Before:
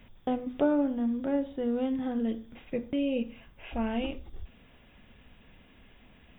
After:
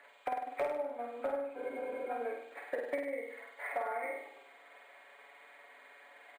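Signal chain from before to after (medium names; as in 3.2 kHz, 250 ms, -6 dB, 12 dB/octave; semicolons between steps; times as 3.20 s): knee-point frequency compression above 1.2 kHz 1.5:1; high-pass 540 Hz 24 dB/octave; comb 7 ms, depth 79%; compression 6:1, threshold -40 dBFS, peak gain reduction 18 dB; transient shaper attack +6 dB, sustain +1 dB; hard clipper -30 dBFS, distortion -18 dB; on a send: flutter echo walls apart 8.6 m, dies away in 0.75 s; on the sum: spectral freeze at 1.58 s, 0.51 s; decimation joined by straight lines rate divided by 4×; trim +3 dB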